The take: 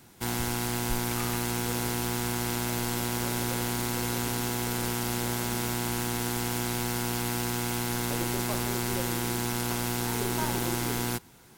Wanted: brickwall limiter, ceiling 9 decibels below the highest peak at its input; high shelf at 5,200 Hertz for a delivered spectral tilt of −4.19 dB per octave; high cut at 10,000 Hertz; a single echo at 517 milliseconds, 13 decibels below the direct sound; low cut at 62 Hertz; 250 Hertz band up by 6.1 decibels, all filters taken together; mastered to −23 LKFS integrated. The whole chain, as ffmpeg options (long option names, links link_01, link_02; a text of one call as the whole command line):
ffmpeg -i in.wav -af "highpass=62,lowpass=10000,equalizer=frequency=250:width_type=o:gain=7,highshelf=frequency=5200:gain=7,alimiter=limit=-20dB:level=0:latency=1,aecho=1:1:517:0.224,volume=7.5dB" out.wav